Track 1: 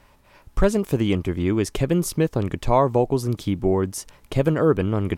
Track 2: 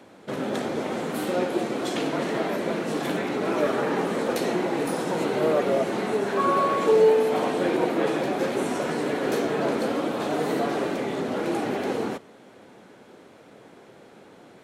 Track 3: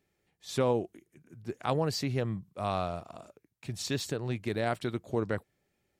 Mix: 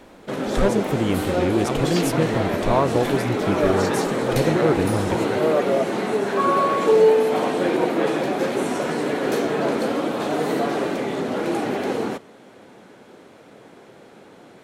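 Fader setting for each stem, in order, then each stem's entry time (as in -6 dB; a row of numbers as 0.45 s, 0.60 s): -2.0 dB, +3.0 dB, +1.0 dB; 0.00 s, 0.00 s, 0.00 s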